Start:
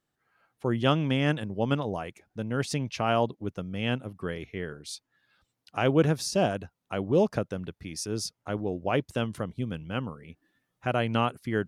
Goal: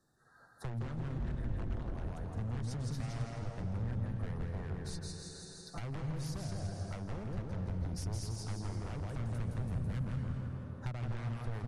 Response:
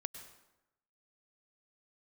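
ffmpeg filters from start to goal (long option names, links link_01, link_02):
-filter_complex "[0:a]acompressor=threshold=-31dB:ratio=16,asuperstop=centerf=2600:order=20:qfactor=1.5,lowshelf=frequency=190:gain=5,aecho=1:1:165|330|495|660|825|990:0.668|0.307|0.141|0.0651|0.0299|0.0138,aeval=exprs='(tanh(22.4*val(0)+0.65)-tanh(0.65))/22.4':channel_layout=same,asettb=1/sr,asplit=3[link_01][link_02][link_03];[link_01]atrim=end=1.184[link_04];[link_02]atrim=start=1.18:end=2.06,asetpts=PTS-STARTPTS,afade=type=in:duration=0.004:curve=qsin,afade=type=out:start_time=0.876:duration=0.004:curve=qsin,aeval=exprs='val(0)*sin(2*PI*92*n/s)':channel_layout=same[link_05];[link_03]atrim=start=2.056[link_06];[link_04][link_05]acrossfade=duration=0.004:curve1=hsin:curve2=qsin[link_07];[link_07][link_06]acrossfade=duration=0.004:curve1=qsin:curve2=hsin,aeval=exprs='0.0237*(abs(mod(val(0)/0.0237+3,4)-2)-1)':channel_layout=same,asplit=3[link_08][link_09][link_10];[link_08]afade=type=out:start_time=4.93:duration=0.02[link_11];[link_09]aecho=1:1:5.9:0.88,afade=type=in:start_time=4.93:duration=0.02,afade=type=out:start_time=5.79:duration=0.02[link_12];[link_10]afade=type=in:start_time=5.79:duration=0.02[link_13];[link_11][link_12][link_13]amix=inputs=3:normalize=0,asettb=1/sr,asplit=3[link_14][link_15][link_16];[link_14]atrim=end=9.644[link_17];[link_15]atrim=start=9.64:end=10.18,asetpts=PTS-STARTPTS,afade=type=in:duration=0.004:curve=qsin,afade=type=out:start_time=0.536:duration=0.004:curve=qsin,highshelf=frequency=6300:gain=8[link_18];[link_16]atrim=start=10.176[link_19];[link_17][link_18]acrossfade=duration=0.004:curve1=hsin:curve2=qsin[link_20];[link_20][link_19]acrossfade=duration=0.004:curve1=qsin:curve2=hsin[link_21];[1:a]atrim=start_sample=2205,asetrate=22050,aresample=44100[link_22];[link_21][link_22]afir=irnorm=-1:irlink=0,acrossover=split=130[link_23][link_24];[link_24]acompressor=threshold=-56dB:ratio=4[link_25];[link_23][link_25]amix=inputs=2:normalize=0,volume=8dB" -ar 48000 -c:a libmp3lame -b:a 56k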